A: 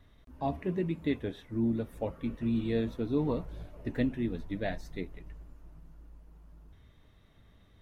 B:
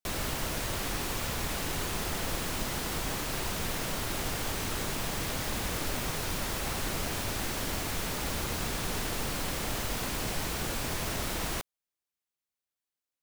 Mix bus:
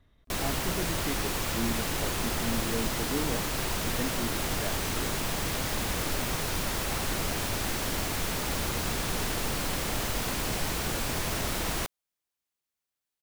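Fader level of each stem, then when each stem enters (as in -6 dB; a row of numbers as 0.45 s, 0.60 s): -4.0 dB, +2.5 dB; 0.00 s, 0.25 s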